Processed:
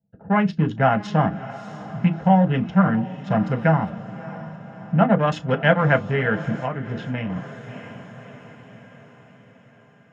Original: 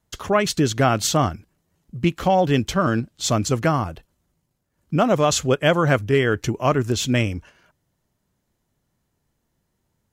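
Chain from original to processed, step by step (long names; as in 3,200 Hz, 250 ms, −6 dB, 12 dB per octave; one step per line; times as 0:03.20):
adaptive Wiener filter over 41 samples
parametric band 360 Hz −10 dB 0.69 octaves
low-pass that shuts in the quiet parts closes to 760 Hz, open at −17 dBFS
0:05.27–0:05.99: high-shelf EQ 3,900 Hz +9 dB
feedback delay with all-pass diffusion 620 ms, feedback 57%, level −15.5 dB
0:03.30–0:03.89: background noise pink −44 dBFS
treble cut that deepens with the level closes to 2,800 Hz, closed at −17.5 dBFS
convolution reverb RT60 0.15 s, pre-delay 3 ms, DRR 3 dB
0:06.59–0:07.30: downward compressor 6 to 1, threshold −13 dBFS, peak gain reduction 9 dB
level −10 dB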